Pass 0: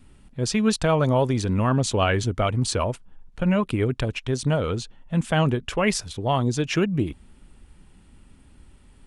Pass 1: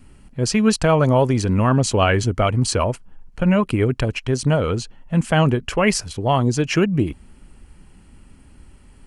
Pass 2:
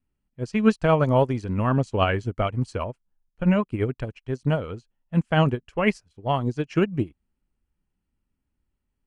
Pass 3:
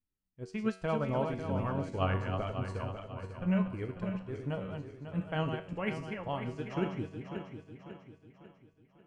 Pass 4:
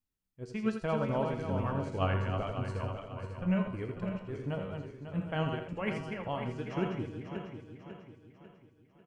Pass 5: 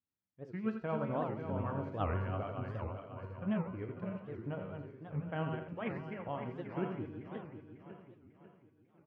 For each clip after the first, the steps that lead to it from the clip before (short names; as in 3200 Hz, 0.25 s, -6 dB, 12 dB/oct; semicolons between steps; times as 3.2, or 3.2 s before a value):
notch 3600 Hz, Q 5.7; gain +4.5 dB
high shelf 7700 Hz -9.5 dB; upward expander 2.5:1, over -33 dBFS
regenerating reverse delay 0.273 s, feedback 66%, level -6 dB; resonator 94 Hz, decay 0.51 s, harmonics all, mix 70%; gain -5 dB
echo 83 ms -8.5 dB
BPF 100–2100 Hz; reverb, pre-delay 5 ms, DRR 15.5 dB; record warp 78 rpm, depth 250 cents; gain -4 dB